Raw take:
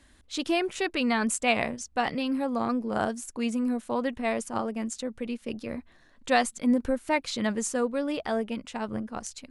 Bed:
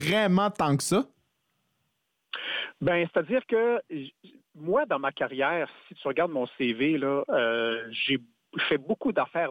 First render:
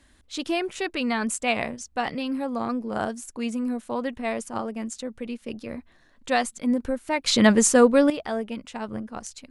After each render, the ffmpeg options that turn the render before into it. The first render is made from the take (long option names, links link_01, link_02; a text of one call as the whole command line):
ffmpeg -i in.wav -filter_complex "[0:a]asplit=3[link_01][link_02][link_03];[link_01]atrim=end=7.262[link_04];[link_02]atrim=start=7.258:end=8.102,asetpts=PTS-STARTPTS,volume=11.5dB[link_05];[link_03]atrim=start=8.098[link_06];[link_04][link_05]acrossfade=duration=0.004:curve1=hsin:curve2=hsin[link_07];[link_07][link_06]acrossfade=duration=0.004:curve1=hsin:curve2=hsin" out.wav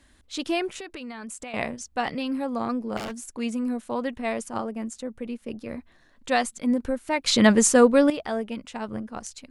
ffmpeg -i in.wav -filter_complex "[0:a]asettb=1/sr,asplit=3[link_01][link_02][link_03];[link_01]atrim=end=0.764[link_04];[link_02]atrim=start=0.76:end=1.54,asetpts=PTS-STARTPTS,afade=type=in:duration=0.004:curve=qsin,afade=type=out:start_time=0.776:duration=0.004:curve=qsin,acompressor=threshold=-34dB:ratio=10:attack=3.2:release=140:knee=1:detection=peak[link_05];[link_03]atrim=start=1.536[link_06];[link_04][link_05]acrossfade=duration=0.004:curve1=hsin:curve2=qsin[link_07];[link_07][link_06]acrossfade=duration=0.004:curve1=qsin:curve2=hsin,asettb=1/sr,asplit=3[link_08][link_09][link_10];[link_08]atrim=end=2.974[link_11];[link_09]atrim=start=2.97:end=3.39,asetpts=PTS-STARTPTS,afade=type=in:duration=0.004:curve=qsin,afade=type=out:start_time=0.416:duration=0.004:curve=qsin,aeval=exprs='0.0422*(abs(mod(val(0)/0.0422+3,4)-2)-1)':channel_layout=same[link_12];[link_10]atrim=start=3.386[link_13];[link_11][link_12]acrossfade=duration=0.004:curve1=hsin:curve2=qsin[link_14];[link_14][link_13]acrossfade=duration=0.004:curve1=qsin:curve2=hsin,asettb=1/sr,asplit=3[link_15][link_16][link_17];[link_15]atrim=end=4.644[link_18];[link_16]atrim=start=4.64:end=5.66,asetpts=PTS-STARTPTS,afade=type=in:duration=0.004:curve=qsin,afade=type=out:start_time=1.016:duration=0.004:curve=qsin,equalizer=frequency=4200:width_type=o:width=2.3:gain=-5.5[link_19];[link_17]atrim=start=5.656[link_20];[link_18][link_19]acrossfade=duration=0.004:curve1=hsin:curve2=qsin[link_21];[link_21][link_20]acrossfade=duration=0.004:curve1=qsin:curve2=hsin" out.wav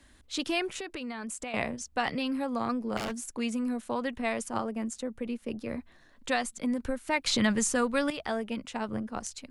ffmpeg -i in.wav -filter_complex "[0:a]acrossover=split=150|980[link_01][link_02][link_03];[link_02]acompressor=threshold=-30dB:ratio=6[link_04];[link_03]alimiter=limit=-17.5dB:level=0:latency=1:release=362[link_05];[link_01][link_04][link_05]amix=inputs=3:normalize=0" out.wav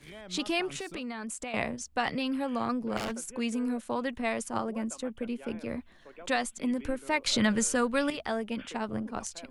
ffmpeg -i in.wav -i bed.wav -filter_complex "[1:a]volume=-23dB[link_01];[0:a][link_01]amix=inputs=2:normalize=0" out.wav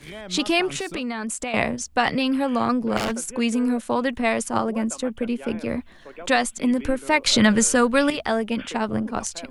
ffmpeg -i in.wav -af "volume=9dB" out.wav